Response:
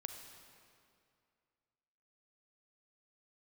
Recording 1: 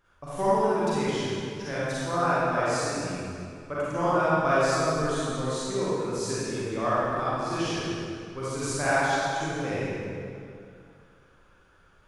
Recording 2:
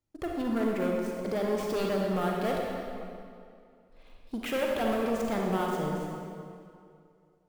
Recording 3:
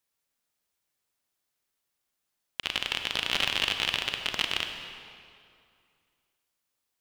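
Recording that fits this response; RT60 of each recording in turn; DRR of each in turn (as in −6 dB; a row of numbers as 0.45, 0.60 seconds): 3; 2.4, 2.4, 2.4 seconds; −10.5, −1.5, 5.5 decibels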